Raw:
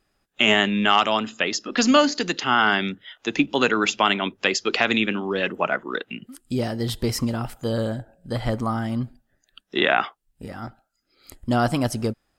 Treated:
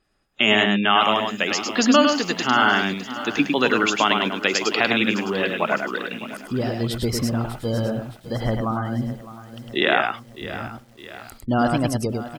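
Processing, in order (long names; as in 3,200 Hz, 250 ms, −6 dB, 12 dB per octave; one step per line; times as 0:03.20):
gate on every frequency bin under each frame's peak −30 dB strong
single-tap delay 104 ms −4.5 dB
feedback echo at a low word length 609 ms, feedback 55%, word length 7 bits, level −14.5 dB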